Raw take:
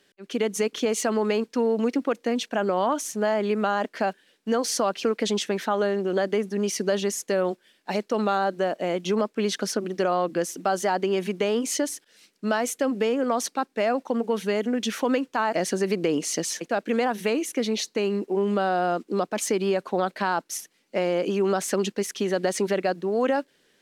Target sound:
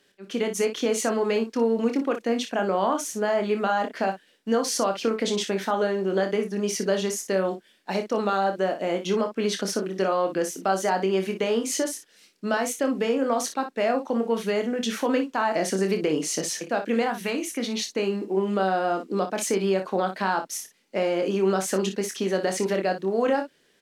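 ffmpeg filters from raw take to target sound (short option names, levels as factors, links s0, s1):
-filter_complex "[0:a]asettb=1/sr,asplit=3[s0][s1][s2];[s0]atrim=end=17.034[s3];[s1]atrim=start=17.03:end=17.87,asetpts=PTS-STARTPTS,afade=t=in:d=0.004:c=qsin,afade=t=out:st=0.836:d=0.004:c=qsin,equalizer=f=460:t=o:w=0.88:g=-6.5[s4];[s2]atrim=start=17.866[s5];[s3][s4]acrossfade=d=0.004:c1=hsin:c2=qsin[s6];[s6][s5]acrossfade=d=0.004:c1=qsin:c2=hsin,aecho=1:1:26|58:0.447|0.316,volume=0.891"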